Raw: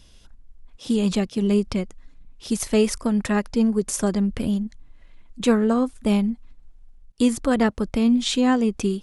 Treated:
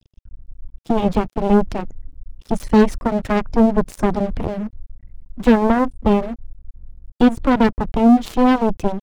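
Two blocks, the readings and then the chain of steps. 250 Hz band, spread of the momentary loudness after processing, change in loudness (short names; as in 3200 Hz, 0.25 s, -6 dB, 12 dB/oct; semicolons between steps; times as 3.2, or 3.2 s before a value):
+3.5 dB, 13 LU, +4.0 dB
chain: spectral gate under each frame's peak -30 dB strong; added harmonics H 5 -27 dB, 7 -10 dB, 8 -38 dB, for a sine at -7.5 dBFS; in parallel at -2 dB: limiter -14 dBFS, peak gain reduction 6.5 dB; on the sum: tilt -2.5 dB/oct; crossover distortion -31 dBFS; gain -2 dB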